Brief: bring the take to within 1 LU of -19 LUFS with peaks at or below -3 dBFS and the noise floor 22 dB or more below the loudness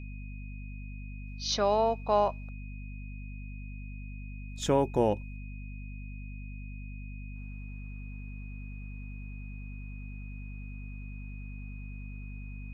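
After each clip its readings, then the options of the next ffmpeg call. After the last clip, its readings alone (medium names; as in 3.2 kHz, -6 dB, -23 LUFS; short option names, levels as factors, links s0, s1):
hum 50 Hz; highest harmonic 250 Hz; hum level -38 dBFS; steady tone 2.5 kHz; tone level -52 dBFS; loudness -35.5 LUFS; peak level -13.0 dBFS; loudness target -19.0 LUFS
-> -af "bandreject=f=50:t=h:w=6,bandreject=f=100:t=h:w=6,bandreject=f=150:t=h:w=6,bandreject=f=200:t=h:w=6,bandreject=f=250:t=h:w=6"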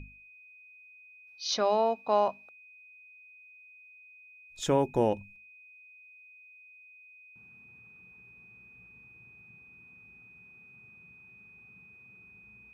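hum not found; steady tone 2.5 kHz; tone level -52 dBFS
-> -af "bandreject=f=2500:w=30"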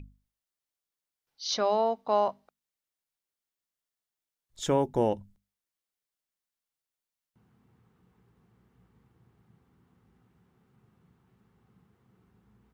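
steady tone not found; loudness -28.5 LUFS; peak level -13.5 dBFS; loudness target -19.0 LUFS
-> -af "volume=2.99"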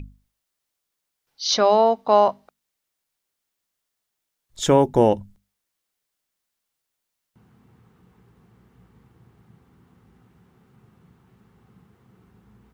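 loudness -19.0 LUFS; peak level -4.0 dBFS; noise floor -81 dBFS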